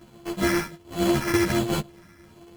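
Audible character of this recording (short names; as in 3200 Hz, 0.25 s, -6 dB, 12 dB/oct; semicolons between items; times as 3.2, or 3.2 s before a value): a buzz of ramps at a fixed pitch in blocks of 128 samples; phasing stages 4, 1.3 Hz, lowest notch 770–2000 Hz; aliases and images of a low sample rate 3700 Hz, jitter 0%; a shimmering, thickened sound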